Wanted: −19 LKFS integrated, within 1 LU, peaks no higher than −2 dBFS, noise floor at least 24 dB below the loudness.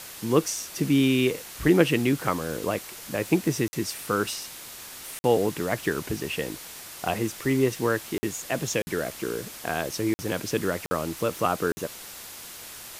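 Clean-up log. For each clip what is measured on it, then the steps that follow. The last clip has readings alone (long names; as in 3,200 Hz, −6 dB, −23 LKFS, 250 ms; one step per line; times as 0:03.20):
number of dropouts 7; longest dropout 50 ms; background noise floor −42 dBFS; target noise floor −51 dBFS; integrated loudness −26.5 LKFS; sample peak −6.0 dBFS; target loudness −19.0 LKFS
→ repair the gap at 0:03.68/0:05.19/0:08.18/0:08.82/0:10.14/0:10.86/0:11.72, 50 ms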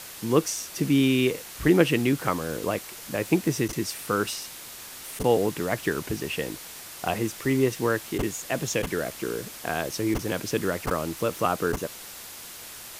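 number of dropouts 0; background noise floor −42 dBFS; target noise floor −51 dBFS
→ broadband denoise 9 dB, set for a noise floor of −42 dBFS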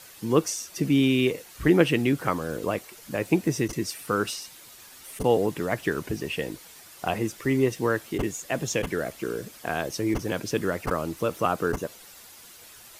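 background noise floor −49 dBFS; target noise floor −51 dBFS
→ broadband denoise 6 dB, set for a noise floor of −49 dBFS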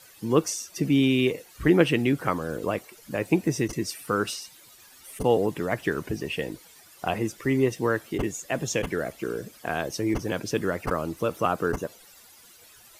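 background noise floor −53 dBFS; integrated loudness −27.0 LKFS; sample peak −6.0 dBFS; target loudness −19.0 LKFS
→ level +8 dB
brickwall limiter −2 dBFS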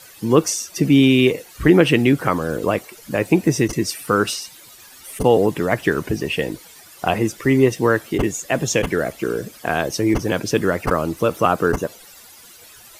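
integrated loudness −19.0 LKFS; sample peak −2.0 dBFS; background noise floor −45 dBFS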